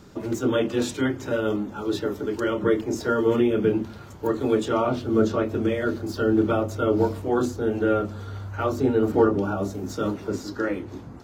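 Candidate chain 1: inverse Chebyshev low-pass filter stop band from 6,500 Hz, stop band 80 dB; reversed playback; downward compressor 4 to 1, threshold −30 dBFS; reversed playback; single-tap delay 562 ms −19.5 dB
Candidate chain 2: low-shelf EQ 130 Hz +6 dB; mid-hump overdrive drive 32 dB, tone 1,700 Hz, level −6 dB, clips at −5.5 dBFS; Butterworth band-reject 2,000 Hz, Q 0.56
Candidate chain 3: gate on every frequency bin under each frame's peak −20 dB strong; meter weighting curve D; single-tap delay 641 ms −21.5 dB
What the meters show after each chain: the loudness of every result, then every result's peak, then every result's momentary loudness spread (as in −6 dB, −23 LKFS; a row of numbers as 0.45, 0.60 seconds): −33.5, −15.5, −25.0 LKFS; −19.0, −6.5, −8.0 dBFS; 4, 5, 8 LU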